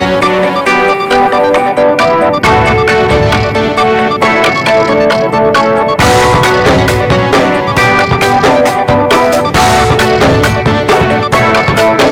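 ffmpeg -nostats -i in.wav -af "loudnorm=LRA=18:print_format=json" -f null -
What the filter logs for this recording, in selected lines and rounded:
"input_i" : "-8.1",
"input_tp" : "-2.1",
"input_lra" : "0.5",
"input_thresh" : "-18.1",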